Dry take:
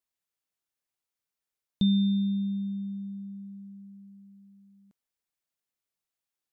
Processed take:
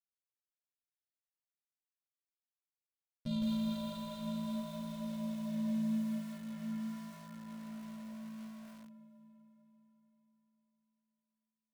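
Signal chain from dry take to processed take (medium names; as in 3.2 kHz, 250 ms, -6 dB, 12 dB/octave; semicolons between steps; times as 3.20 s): compression 5:1, threshold -36 dBFS, peak gain reduction 14 dB; waveshaping leveller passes 5; flange 0.75 Hz, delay 0.3 ms, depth 4.3 ms, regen -64%; granular stretch 1.8×, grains 36 ms; rotary cabinet horn 5 Hz; echo that smears into a reverb 453 ms, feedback 47%, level -7.5 dB; spring tank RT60 2.4 s, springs 50 ms, chirp 60 ms, DRR 2 dB; bit-crushed delay 160 ms, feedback 35%, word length 8-bit, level -3 dB; trim -6 dB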